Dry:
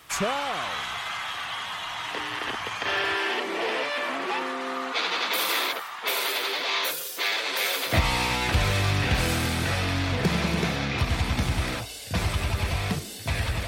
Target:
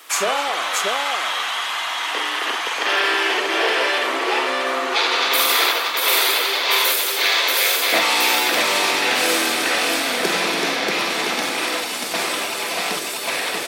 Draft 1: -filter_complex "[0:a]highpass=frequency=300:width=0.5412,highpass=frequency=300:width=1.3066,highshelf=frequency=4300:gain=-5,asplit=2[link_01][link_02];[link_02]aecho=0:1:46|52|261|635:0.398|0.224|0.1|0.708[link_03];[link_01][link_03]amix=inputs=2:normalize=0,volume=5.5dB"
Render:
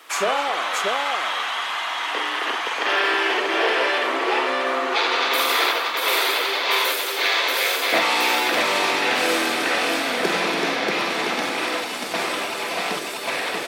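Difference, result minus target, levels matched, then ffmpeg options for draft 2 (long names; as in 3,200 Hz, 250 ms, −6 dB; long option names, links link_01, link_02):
8,000 Hz band −5.0 dB
-filter_complex "[0:a]highpass=frequency=300:width=0.5412,highpass=frequency=300:width=1.3066,highshelf=frequency=4300:gain=4.5,asplit=2[link_01][link_02];[link_02]aecho=0:1:46|52|261|635:0.398|0.224|0.1|0.708[link_03];[link_01][link_03]amix=inputs=2:normalize=0,volume=5.5dB"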